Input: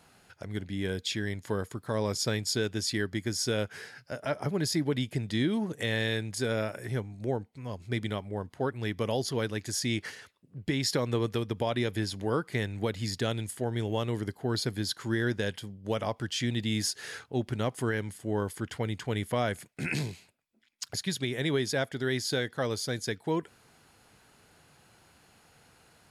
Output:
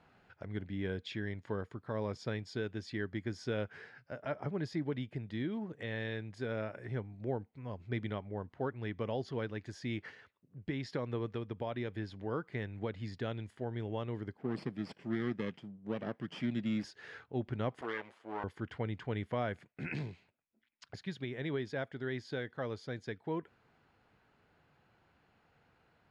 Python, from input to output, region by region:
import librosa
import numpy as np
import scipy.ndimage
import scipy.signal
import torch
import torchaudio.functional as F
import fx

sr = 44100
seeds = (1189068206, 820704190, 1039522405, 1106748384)

y = fx.chain(x, sr, fx.lower_of_two(delay_ms=0.39),
    fx.highpass_res(hz=180.0, q=1.8), at=(14.37, 16.84))
y = fx.chain(y, sr, fx.lower_of_two(delay_ms=8.7),
    fx.highpass(hz=460.0, slope=12), at=(17.81, 18.44))
y = scipy.signal.sosfilt(scipy.signal.butter(2, 2500.0, 'lowpass', fs=sr, output='sos'), y)
y = fx.rider(y, sr, range_db=10, speed_s=2.0)
y = y * librosa.db_to_amplitude(-7.5)